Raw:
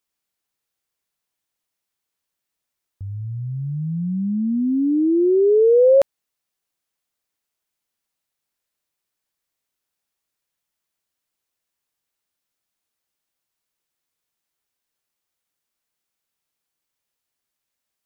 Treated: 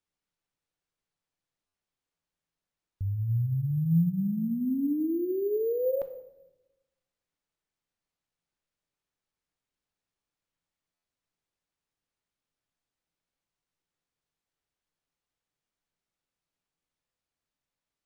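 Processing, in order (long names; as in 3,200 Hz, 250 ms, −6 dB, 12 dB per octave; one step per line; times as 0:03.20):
spectral tilt −2 dB per octave
brickwall limiter −19.5 dBFS, peak gain reduction 13 dB
tuned comb filter 170 Hz, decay 0.45 s, harmonics odd, mix 60%
convolution reverb RT60 1.0 s, pre-delay 7 ms, DRR 11 dB
bad sample-rate conversion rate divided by 3×, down none, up hold
buffer that repeats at 0:01.66/0:10.95, samples 512, times 6
level +1.5 dB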